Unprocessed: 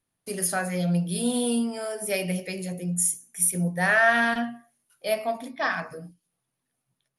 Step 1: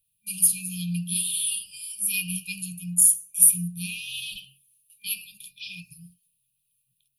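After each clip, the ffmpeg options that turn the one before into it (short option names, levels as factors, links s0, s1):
-af "aexciter=amount=7.3:drive=2.4:freq=7700,equalizer=f=250:t=o:w=1:g=-10,equalizer=f=1000:t=o:w=1:g=4,equalizer=f=2000:t=o:w=1:g=6,equalizer=f=4000:t=o:w=1:g=4,equalizer=f=8000:t=o:w=1:g=-10,afftfilt=real='re*(1-between(b*sr/4096,210,2400))':imag='im*(1-between(b*sr/4096,210,2400))':win_size=4096:overlap=0.75"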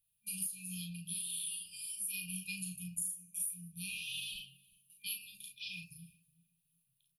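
-filter_complex "[0:a]acompressor=threshold=0.0316:ratio=10,asplit=2[s0][s1];[s1]adelay=37,volume=0.596[s2];[s0][s2]amix=inputs=2:normalize=0,asplit=2[s3][s4];[s4]adelay=369,lowpass=f=900:p=1,volume=0.126,asplit=2[s5][s6];[s6]adelay=369,lowpass=f=900:p=1,volume=0.3,asplit=2[s7][s8];[s8]adelay=369,lowpass=f=900:p=1,volume=0.3[s9];[s3][s5][s7][s9]amix=inputs=4:normalize=0,volume=0.447"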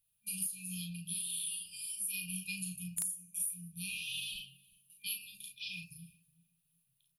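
-af "aeval=exprs='(mod(17.8*val(0)+1,2)-1)/17.8':c=same,volume=1.19"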